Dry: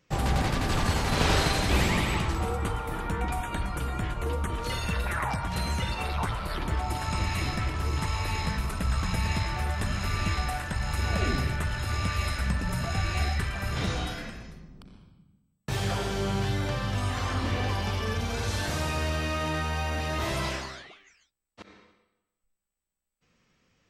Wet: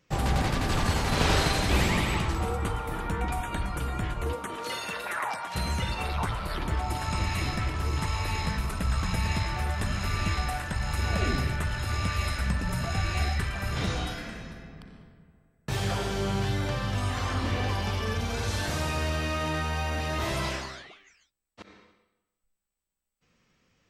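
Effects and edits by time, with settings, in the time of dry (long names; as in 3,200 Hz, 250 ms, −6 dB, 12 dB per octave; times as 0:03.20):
0:04.32–0:05.54: high-pass filter 230 Hz → 510 Hz
0:14.17–0:14.64: thrown reverb, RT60 2.4 s, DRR 2.5 dB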